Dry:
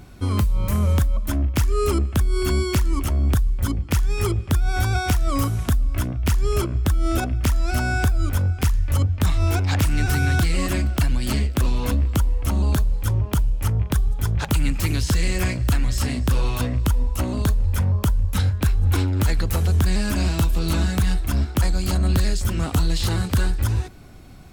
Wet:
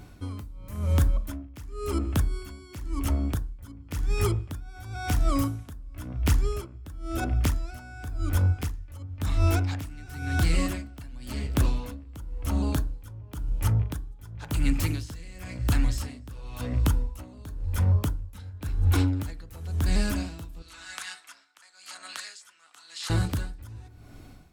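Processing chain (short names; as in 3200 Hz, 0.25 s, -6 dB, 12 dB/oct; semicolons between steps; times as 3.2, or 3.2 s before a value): 20.62–23.1 Chebyshev band-pass 1400–8500 Hz, order 2; FDN reverb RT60 0.52 s, low-frequency decay 1.3×, high-frequency decay 0.25×, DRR 11 dB; dB-linear tremolo 0.95 Hz, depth 20 dB; gain -3 dB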